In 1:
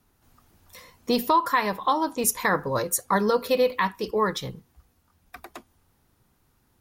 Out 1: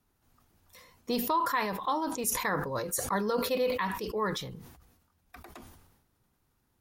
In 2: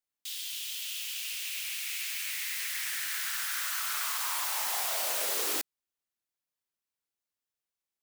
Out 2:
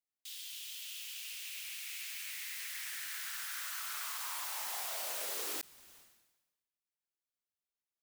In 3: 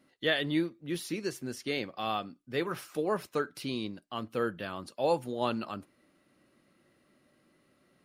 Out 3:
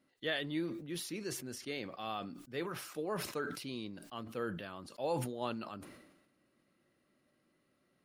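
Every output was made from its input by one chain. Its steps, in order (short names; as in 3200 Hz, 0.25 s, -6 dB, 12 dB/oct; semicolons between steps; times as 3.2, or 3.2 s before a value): sustainer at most 54 dB/s; gain -8 dB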